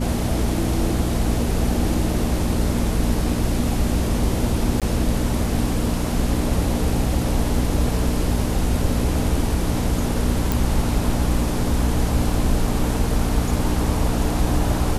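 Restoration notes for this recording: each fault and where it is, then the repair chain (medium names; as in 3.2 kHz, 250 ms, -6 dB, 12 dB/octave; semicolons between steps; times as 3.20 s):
hum 60 Hz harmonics 4 -25 dBFS
4.80–4.82 s: dropout 17 ms
10.52 s: pop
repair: de-click; de-hum 60 Hz, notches 4; interpolate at 4.80 s, 17 ms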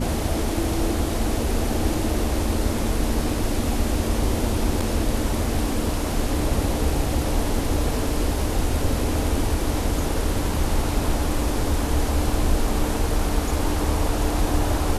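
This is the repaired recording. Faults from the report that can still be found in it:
nothing left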